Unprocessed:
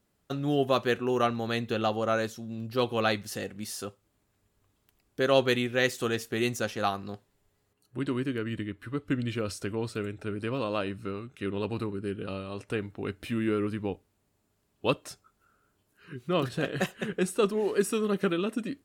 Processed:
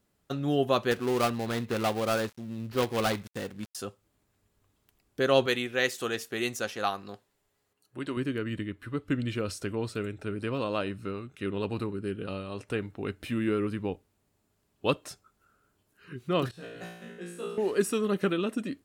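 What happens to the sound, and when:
0.91–3.75 switching dead time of 0.19 ms
5.46–8.17 low shelf 250 Hz -10 dB
16.51–17.58 resonator 58 Hz, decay 0.82 s, mix 100%

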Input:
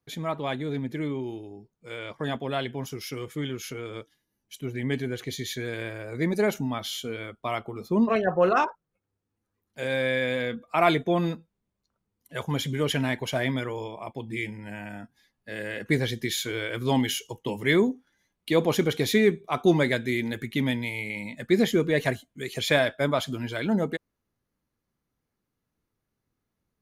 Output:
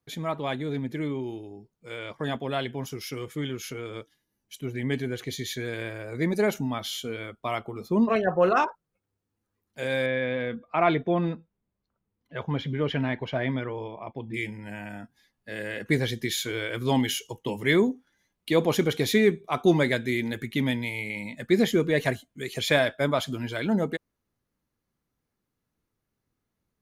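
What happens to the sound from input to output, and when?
10.06–14.34 air absorption 280 m

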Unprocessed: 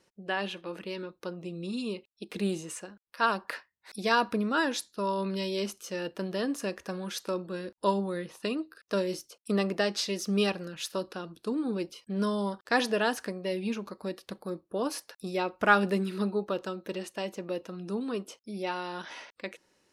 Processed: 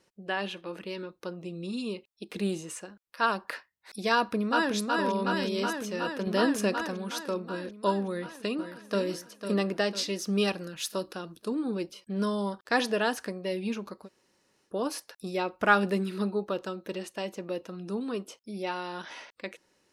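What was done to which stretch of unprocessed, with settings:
4.15–4.74 echo throw 0.37 s, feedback 80%, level -3 dB
6.27–6.88 gain +5 dB
8.08–9.03 echo throw 0.5 s, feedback 50%, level -9 dB
10.47–11.48 high shelf 6700 Hz +7 dB
14.04–14.69 room tone, crossfade 0.10 s

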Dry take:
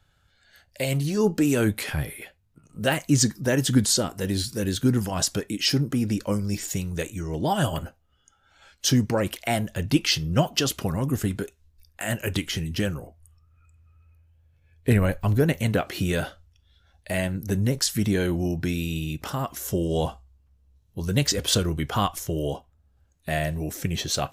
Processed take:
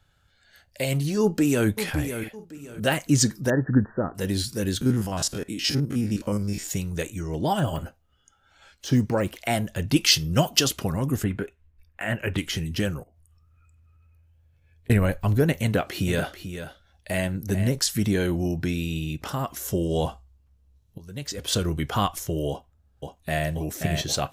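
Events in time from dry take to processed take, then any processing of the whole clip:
1.21–1.67 echo throw 0.56 s, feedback 30%, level -9.5 dB
2.18–2.8 doubler 49 ms -7.5 dB
3.5–4.15 brick-wall FIR low-pass 1900 Hz
4.81–6.67 stepped spectrum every 50 ms
7.59–9.37 de-esser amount 90%
9.96–10.68 high shelf 4200 Hz +9 dB
11.24–12.38 resonant high shelf 3400 Hz -12.5 dB, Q 1.5
13.03–14.9 compressor 8:1, threshold -54 dBFS
15.63–17.69 echo 0.439 s -10 dB
18.64–19.29 high shelf 9800 Hz -7 dB
20.98–21.67 fade in quadratic, from -16.5 dB
22.49–23.48 echo throw 0.53 s, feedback 80%, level -5 dB

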